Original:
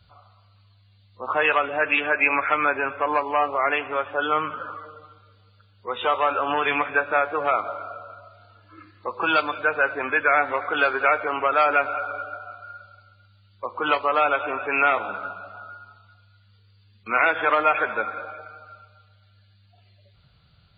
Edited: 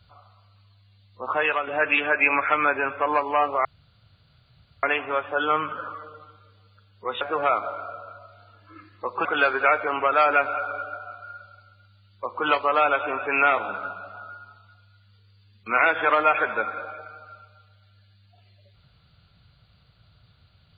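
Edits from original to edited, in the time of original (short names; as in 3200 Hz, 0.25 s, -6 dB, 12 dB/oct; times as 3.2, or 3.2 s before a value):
1.23–1.67 fade out, to -6.5 dB
3.65 insert room tone 1.18 s
6.03–7.23 cut
9.27–10.65 cut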